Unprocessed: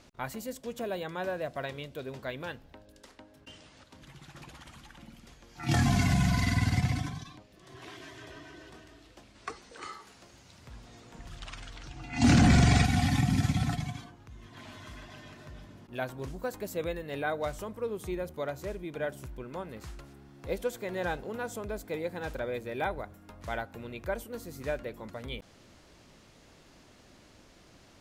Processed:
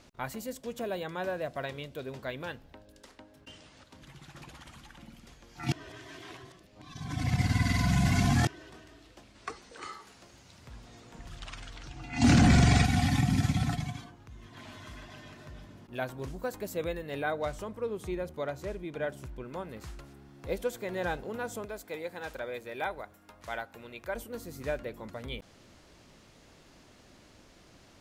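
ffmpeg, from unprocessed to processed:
ffmpeg -i in.wav -filter_complex "[0:a]asettb=1/sr,asplit=3[link_01][link_02][link_03];[link_01]atrim=end=17.314[link_04];[link_02]atrim=start=17.31:end=19.45,asetpts=PTS-STARTPTS,afade=type=in:duration=0.004:curve=qsin,afade=type=out:start_time=2.136:duration=0.004:curve=qsin,highshelf=frequency=12000:gain=-11[link_05];[link_03]atrim=start=19.446[link_06];[link_04][link_05]acrossfade=duration=0.004:curve1=hsin:curve2=qsin[link_07];[link_07][link_06]acrossfade=duration=0.004:curve1=qsin:curve2=hsin,asettb=1/sr,asplit=3[link_08][link_09][link_10];[link_08]atrim=end=21.654[link_11];[link_09]atrim=start=21.65:end=24.15,asetpts=PTS-STARTPTS,afade=type=in:duration=0.004:curve=qsin,afade=type=out:start_time=2.496:duration=0.004:curve=qsin,lowshelf=frequency=350:gain=-11[link_12];[link_10]atrim=start=24.146[link_13];[link_11][link_12]acrossfade=duration=0.004:curve1=hsin:curve2=qsin[link_14];[link_14][link_13]acrossfade=duration=0.004:curve1=qsin:curve2=hsin,asplit=3[link_15][link_16][link_17];[link_15]atrim=end=5.722[link_18];[link_16]atrim=start=5.718:end=8.472,asetpts=PTS-STARTPTS,areverse[link_19];[link_17]atrim=start=8.468[link_20];[link_18][link_19]acrossfade=duration=0.004:curve1=hsin:curve2=hsin[link_21];[link_21][link_20]acrossfade=duration=0.004:curve1=hsin:curve2=hsin" out.wav

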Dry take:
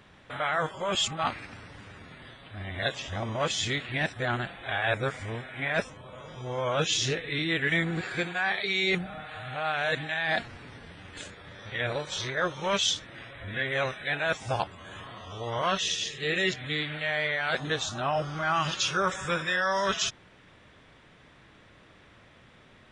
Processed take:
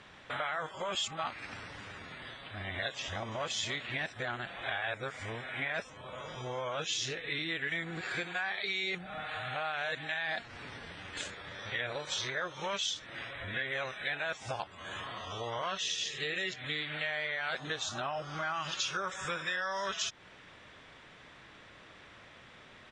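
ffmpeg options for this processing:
ffmpeg -i in.wav -filter_complex "[0:a]asplit=2[link_01][link_02];[link_02]afade=type=in:start_time=3.02:duration=0.01,afade=type=out:start_time=3.47:duration=0.01,aecho=0:1:290|580|870|1160|1450|1740|2030:0.177828|0.115588|0.0751323|0.048836|0.0317434|0.0206332|0.0134116[link_03];[link_01][link_03]amix=inputs=2:normalize=0,acompressor=threshold=-35dB:ratio=6,lowpass=frequency=8600:width=0.5412,lowpass=frequency=8600:width=1.3066,lowshelf=frequency=420:gain=-8,volume=3.5dB" out.wav

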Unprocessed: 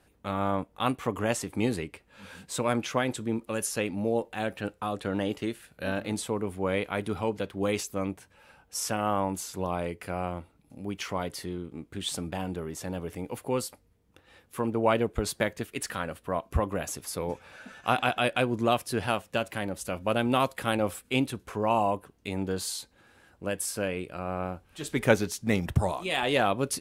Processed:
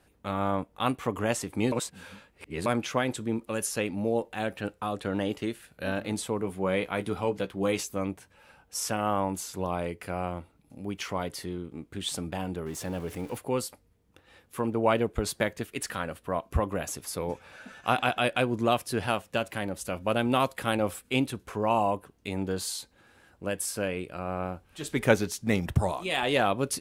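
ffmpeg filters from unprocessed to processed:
ffmpeg -i in.wav -filter_complex "[0:a]asettb=1/sr,asplit=3[link_01][link_02][link_03];[link_01]atrim=end=6.394[link_04];[link_02]atrim=start=6.39:end=7.97,asetpts=PTS-STARTPTS,afade=type=in:duration=0.004:curve=qsin,afade=type=out:start_time=1.576:duration=0.004:curve=qsin,asplit=2[link_05][link_06];[link_06]adelay=16,volume=-9dB[link_07];[link_05][link_07]amix=inputs=2:normalize=0,atrim=end_sample=69678[link_08];[link_03]atrim=start=7.966[link_09];[link_04][link_08]acrossfade=duration=0.004:curve1=hsin:curve2=qsin[link_10];[link_10][link_09]acrossfade=duration=0.004:curve1=qsin:curve2=hsin,asettb=1/sr,asplit=3[link_11][link_12][link_13];[link_11]atrim=end=12.664[link_14];[link_12]atrim=start=12.66:end=13.38,asetpts=PTS-STARTPTS,afade=type=in:duration=0.004:curve=qsin,afade=type=out:start_time=0.716:duration=0.004:curve=qsin,aeval=exprs='val(0)+0.5*0.00631*sgn(val(0))':channel_layout=same[link_15];[link_13]atrim=start=13.376[link_16];[link_14][link_15]acrossfade=duration=0.004:curve1=hsin:curve2=qsin[link_17];[link_17][link_16]acrossfade=duration=0.004:curve1=qsin:curve2=hsin,asplit=3[link_18][link_19][link_20];[link_18]atrim=end=1.722[link_21];[link_19]atrim=start=1.718:end=2.662,asetpts=PTS-STARTPTS,areverse[link_22];[link_20]atrim=start=2.658[link_23];[link_21][link_22]acrossfade=duration=0.004:curve1=hsin:curve2=hsin[link_24];[link_24][link_23]acrossfade=duration=0.004:curve1=hsin:curve2=hsin" out.wav

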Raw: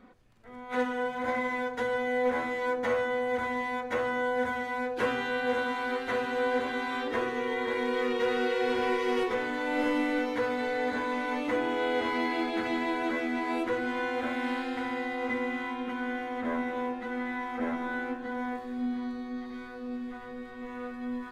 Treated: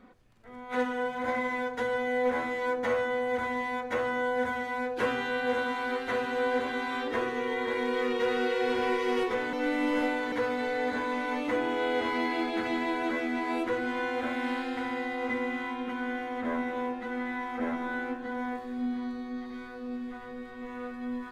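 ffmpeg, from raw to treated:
ffmpeg -i in.wav -filter_complex "[0:a]asplit=3[link_01][link_02][link_03];[link_01]atrim=end=9.532[link_04];[link_02]atrim=start=9.528:end=10.322,asetpts=PTS-STARTPTS,areverse[link_05];[link_03]atrim=start=10.318[link_06];[link_04][link_05]acrossfade=duration=0.004:curve1=hsin:curve2=hsin[link_07];[link_07][link_06]acrossfade=duration=0.004:curve1=hsin:curve2=hsin" out.wav

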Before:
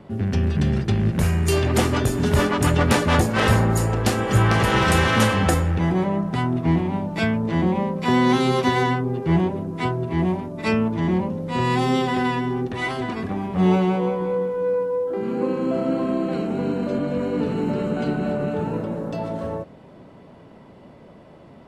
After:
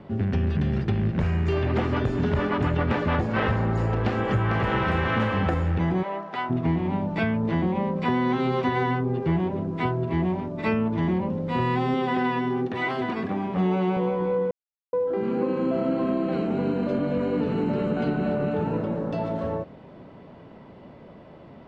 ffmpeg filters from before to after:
ffmpeg -i in.wav -filter_complex "[0:a]asettb=1/sr,asplit=3[link_01][link_02][link_03];[link_01]atrim=end=0.994[link_04];[link_02]atrim=start=0.99:end=4.25,asetpts=PTS-STARTPTS,afade=type=in:duration=0.004:curve=qsin,afade=type=out:start_time=3.256:duration=0.004:curve=qsin,lowpass=6600[link_05];[link_03]atrim=start=4.246[link_06];[link_04][link_05]acrossfade=duration=0.004:curve1=hsin:curve2=qsin[link_07];[link_07][link_06]acrossfade=duration=0.004:curve1=qsin:curve2=hsin,asplit=3[link_08][link_09][link_10];[link_08]afade=type=out:start_time=6.02:duration=0.02[link_11];[link_09]highpass=580,lowpass=6500,afade=type=in:start_time=6.02:duration=0.02,afade=type=out:start_time=6.49:duration=0.02[link_12];[link_10]afade=type=in:start_time=6.49:duration=0.02[link_13];[link_11][link_12][link_13]amix=inputs=3:normalize=0,asettb=1/sr,asplit=3[link_14][link_15][link_16];[link_14]atrim=end=11.944[link_17];[link_15]atrim=start=11.94:end=13.97,asetpts=PTS-STARTPTS,afade=type=in:duration=0.004:curve=qsin,afade=type=out:start_time=2.026:duration=0.004:curve=qsin,highpass=150[link_18];[link_16]atrim=start=13.966[link_19];[link_17][link_18]acrossfade=duration=0.004:curve1=hsin:curve2=qsin[link_20];[link_20][link_19]acrossfade=duration=0.004:curve1=qsin:curve2=hsin,asplit=3[link_21][link_22][link_23];[link_21]atrim=end=14.51,asetpts=PTS-STARTPTS,afade=type=out:start_time=14.506:duration=0.004:curve=hsin[link_24];[link_22]atrim=start=14.51:end=14.93,asetpts=PTS-STARTPTS,volume=0[link_25];[link_23]atrim=start=14.93,asetpts=PTS-STARTPTS,afade=type=in:duration=0.004:curve=hsin[link_26];[link_24][link_25][link_26]concat=n=3:v=0:a=1,acrossover=split=2900[link_27][link_28];[link_28]acompressor=threshold=-43dB:ratio=4:attack=1:release=60[link_29];[link_27][link_29]amix=inputs=2:normalize=0,lowpass=4200,acompressor=threshold=-20dB:ratio=6" out.wav

